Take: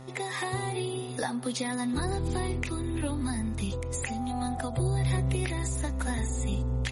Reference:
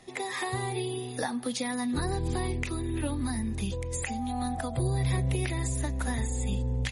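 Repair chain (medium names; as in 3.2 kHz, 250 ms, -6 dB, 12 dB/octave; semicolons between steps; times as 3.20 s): de-hum 130.3 Hz, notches 11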